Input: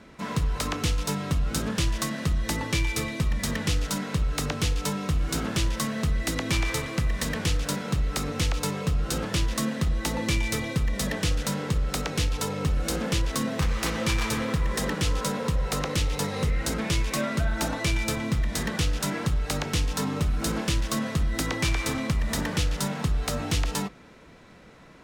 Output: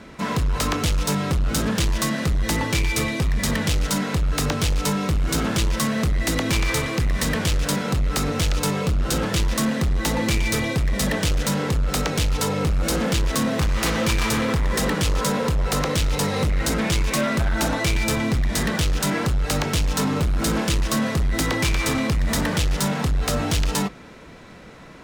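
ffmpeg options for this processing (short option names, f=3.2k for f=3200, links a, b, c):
-af "asoftclip=type=hard:threshold=-25dB,volume=7.5dB"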